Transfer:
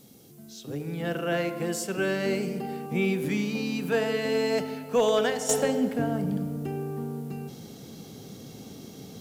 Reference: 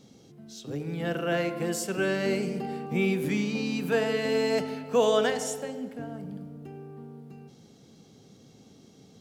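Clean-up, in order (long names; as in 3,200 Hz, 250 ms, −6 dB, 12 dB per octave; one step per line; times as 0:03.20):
clipped peaks rebuilt −15.5 dBFS
downward expander −37 dBFS, range −21 dB
level 0 dB, from 0:05.49 −10.5 dB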